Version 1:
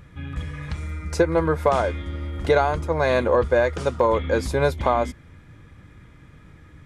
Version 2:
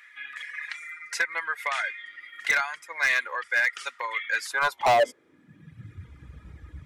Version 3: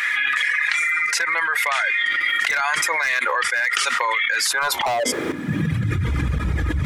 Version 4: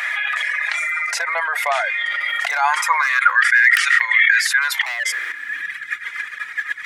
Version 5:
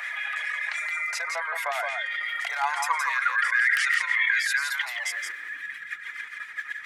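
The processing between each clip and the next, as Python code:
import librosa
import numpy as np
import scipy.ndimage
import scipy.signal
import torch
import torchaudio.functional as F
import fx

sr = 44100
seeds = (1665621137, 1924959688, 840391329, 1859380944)

y1 = fx.dereverb_blind(x, sr, rt60_s=1.4)
y1 = fx.filter_sweep_highpass(y1, sr, from_hz=1900.0, to_hz=61.0, start_s=4.38, end_s=6.18, q=4.6)
y1 = np.clip(10.0 ** (17.0 / 20.0) * y1, -1.0, 1.0) / 10.0 ** (17.0 / 20.0)
y2 = fx.tremolo_shape(y1, sr, shape='saw_up', hz=0.94, depth_pct=70)
y2 = fx.env_flatten(y2, sr, amount_pct=100)
y2 = F.gain(torch.from_numpy(y2), -1.0).numpy()
y3 = (np.mod(10.0 ** (3.0 / 20.0) * y2 + 1.0, 2.0) - 1.0) / 10.0 ** (3.0 / 20.0)
y3 = fx.filter_sweep_highpass(y3, sr, from_hz=680.0, to_hz=1800.0, start_s=2.41, end_s=3.58, q=5.1)
y3 = F.gain(torch.from_numpy(y3), -2.5).numpy()
y4 = fx.harmonic_tremolo(y3, sr, hz=7.2, depth_pct=50, crossover_hz=1800.0)
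y4 = y4 + 10.0 ** (-5.0 / 20.0) * np.pad(y4, (int(169 * sr / 1000.0), 0))[:len(y4)]
y4 = F.gain(torch.from_numpy(y4), -7.5).numpy()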